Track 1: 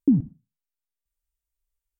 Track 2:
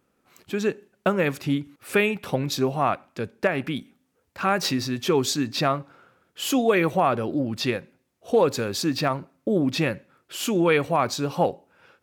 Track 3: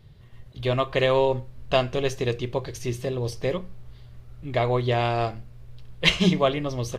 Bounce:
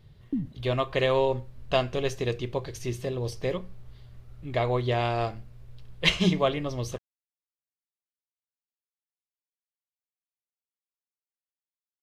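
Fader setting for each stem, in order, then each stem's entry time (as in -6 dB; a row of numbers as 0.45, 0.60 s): -11.0 dB, off, -3.0 dB; 0.25 s, off, 0.00 s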